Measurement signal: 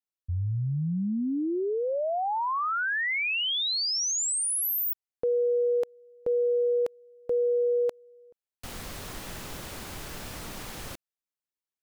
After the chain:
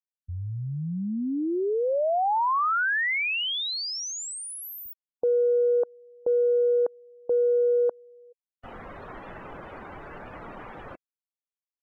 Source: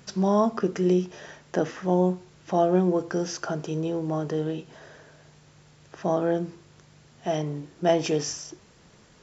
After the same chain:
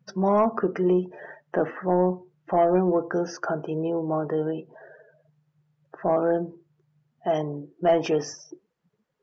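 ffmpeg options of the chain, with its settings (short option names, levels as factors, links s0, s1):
-filter_complex "[0:a]asplit=2[s0][s1];[s1]highpass=f=720:p=1,volume=4.47,asoftclip=type=tanh:threshold=0.355[s2];[s0][s2]amix=inputs=2:normalize=0,lowpass=f=1300:p=1,volume=0.501,afftdn=nr=28:nf=-40"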